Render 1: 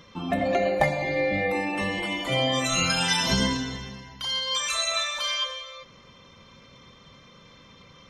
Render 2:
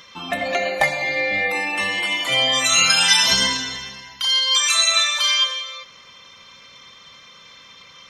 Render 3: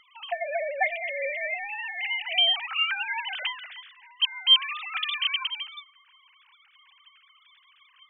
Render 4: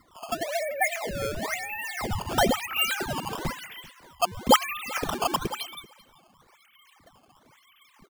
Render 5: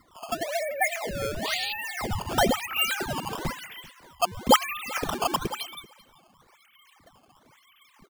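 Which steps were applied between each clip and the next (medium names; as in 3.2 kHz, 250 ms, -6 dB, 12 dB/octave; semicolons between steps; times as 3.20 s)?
tilt shelf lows -9.5 dB, about 710 Hz; trim +1.5 dB
formants replaced by sine waves; trim -8.5 dB
decimation with a swept rate 13×, swing 160% 1 Hz; delay 388 ms -22.5 dB
painted sound noise, 1.45–1.73 s, 2.4–4.8 kHz -32 dBFS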